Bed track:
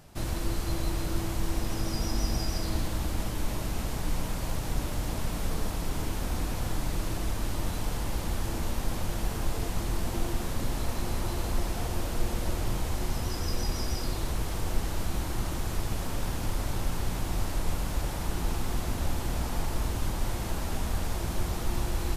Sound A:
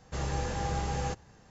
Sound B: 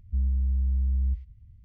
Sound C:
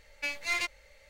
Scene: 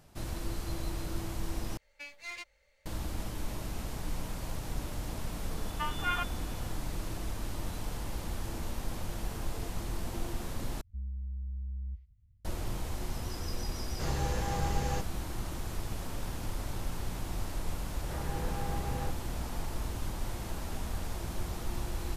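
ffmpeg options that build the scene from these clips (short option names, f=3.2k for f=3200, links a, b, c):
-filter_complex "[3:a]asplit=2[a][b];[1:a]asplit=2[c][d];[0:a]volume=-6dB[e];[b]lowpass=f=3k:t=q:w=0.5098,lowpass=f=3k:t=q:w=0.6013,lowpass=f=3k:t=q:w=0.9,lowpass=f=3k:t=q:w=2.563,afreqshift=-3500[f];[d]lowpass=2.3k[g];[e]asplit=3[h][i][j];[h]atrim=end=1.774[k];[a]atrim=end=1.09,asetpts=PTS-STARTPTS,volume=-12dB[l];[i]atrim=start=2.856:end=10.814[m];[2:a]atrim=end=1.64,asetpts=PTS-STARTPTS,volume=-13dB[n];[j]atrim=start=12.446[o];[f]atrim=end=1.09,asetpts=PTS-STARTPTS,volume=-1dB,afade=t=in:d=0.004:c=hsin,afade=t=out:st=1.086:d=0.004:c=hsin,adelay=245637S[p];[c]atrim=end=1.5,asetpts=PTS-STARTPTS,volume=-1.5dB,afade=t=in:d=0.004:c=hsin,afade=t=out:st=1.496:d=0.004:c=hsin,adelay=13870[q];[g]atrim=end=1.5,asetpts=PTS-STARTPTS,volume=-5.5dB,afade=t=in:d=0.004:c=hsin,afade=t=out:st=1.496:d=0.004:c=hsin,adelay=17970[r];[k][l]acrossfade=d=0.004:c1=hsin:c2=hsin[s];[s][m]acrossfade=d=0.004:c1=hsin:c2=hsin[t];[t][n]acrossfade=d=0.004:c1=hsin:c2=hsin[u];[u][o]acrossfade=d=0.004:c1=hsin:c2=hsin[v];[v][p][q][r]amix=inputs=4:normalize=0"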